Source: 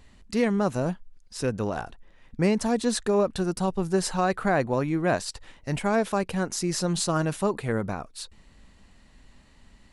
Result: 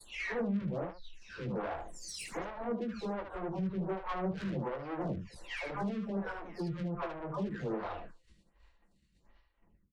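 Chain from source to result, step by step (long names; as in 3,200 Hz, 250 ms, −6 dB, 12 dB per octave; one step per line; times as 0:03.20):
every frequency bin delayed by itself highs early, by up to 723 ms
downward expander −44 dBFS
treble cut that deepens with the level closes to 450 Hz, closed at −23 dBFS
high-shelf EQ 9,300 Hz −9.5 dB
tube saturation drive 35 dB, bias 0.25
ambience of single reflections 21 ms −8.5 dB, 76 ms −7 dB
phaser with staggered stages 1.3 Hz
level +3 dB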